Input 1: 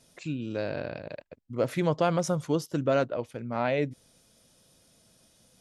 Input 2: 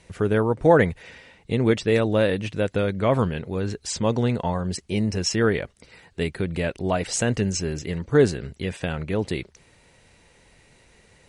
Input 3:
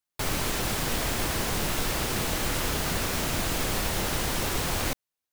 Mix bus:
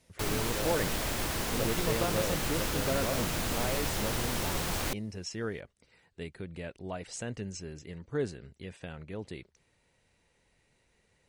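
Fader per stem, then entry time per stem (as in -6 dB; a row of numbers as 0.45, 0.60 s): -8.5, -15.0, -4.5 dB; 0.00, 0.00, 0.00 s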